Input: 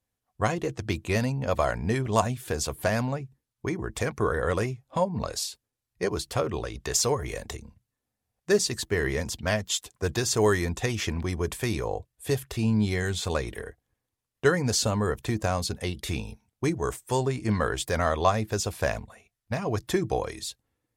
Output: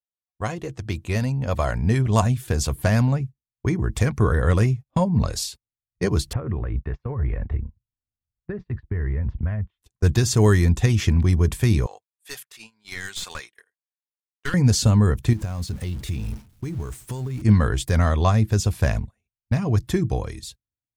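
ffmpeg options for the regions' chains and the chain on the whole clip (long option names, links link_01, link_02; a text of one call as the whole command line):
ffmpeg -i in.wav -filter_complex "[0:a]asettb=1/sr,asplit=3[link_01][link_02][link_03];[link_01]atrim=end=6.334[link_04];[link_02]atrim=start=6.33:end=9.82,asetpts=PTS-STARTPTS,afade=type=in:duration=0.004:curve=qsin,afade=type=out:start_time=3.486:duration=0.004:curve=qsin,asubboost=boost=3:cutoff=120,acompressor=threshold=-32dB:ratio=10:attack=3.2:release=140:knee=1:detection=peak,lowpass=frequency=2000:width=0.5412,lowpass=frequency=2000:width=1.3066[link_05];[link_03]atrim=start=9.816[link_06];[link_04][link_05]acrossfade=duration=0.004:curve1=hsin:curve2=qsin[link_07];[link_07][link_06]acrossfade=duration=0.004:curve1=qsin:curve2=hsin,asettb=1/sr,asplit=3[link_08][link_09][link_10];[link_08]atrim=end=11.864[link_11];[link_09]atrim=start=11.86:end=14.54,asetpts=PTS-STARTPTS,afade=type=in:duration=0.004:curve=qsin,afade=type=out:start_time=2.676:duration=0.004:curve=qsin,highpass=1200,aeval=exprs='clip(val(0),-1,0.0266)':channel_layout=same[link_12];[link_10]atrim=start=14.536[link_13];[link_11][link_12]acrossfade=duration=0.004:curve1=hsin:curve2=qsin[link_14];[link_14][link_13]acrossfade=duration=0.004:curve1=qsin:curve2=hsin,asettb=1/sr,asplit=3[link_15][link_16][link_17];[link_15]atrim=end=15.334[link_18];[link_16]atrim=start=15.33:end=17.42,asetpts=PTS-STARTPTS,afade=type=in:duration=0.004:curve=qsin,afade=type=out:start_time=2.086:duration=0.004:curve=qsin,aeval=exprs='val(0)+0.5*0.0168*sgn(val(0))':channel_layout=same,acompressor=threshold=-36dB:ratio=4:attack=3.2:release=140:knee=1:detection=peak,acrusher=bits=6:mode=log:mix=0:aa=0.000001[link_19];[link_17]atrim=start=17.416[link_20];[link_18][link_19]acrossfade=duration=0.004:curve1=hsin:curve2=qsin[link_21];[link_21][link_20]acrossfade=duration=0.004:curve1=qsin:curve2=hsin,agate=range=-25dB:threshold=-40dB:ratio=16:detection=peak,asubboost=boost=4:cutoff=240,dynaudnorm=framelen=340:gausssize=9:maxgain=6.5dB,volume=-2.5dB" out.wav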